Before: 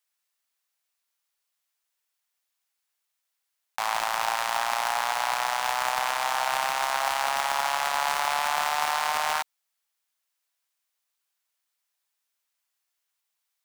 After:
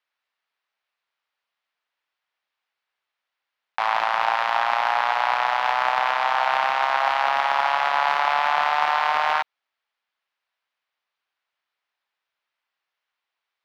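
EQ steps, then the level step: distance through air 320 m; bass shelf 300 Hz -11.5 dB; +8.5 dB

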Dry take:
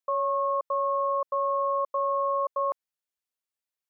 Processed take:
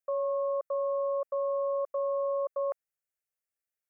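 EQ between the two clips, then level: static phaser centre 1 kHz, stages 6; 0.0 dB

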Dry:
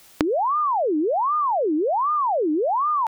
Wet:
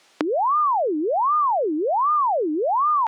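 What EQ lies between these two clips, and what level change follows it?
high-pass 280 Hz 12 dB/octave; dynamic bell 2 kHz, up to +5 dB, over -35 dBFS, Q 0.82; distance through air 90 m; 0.0 dB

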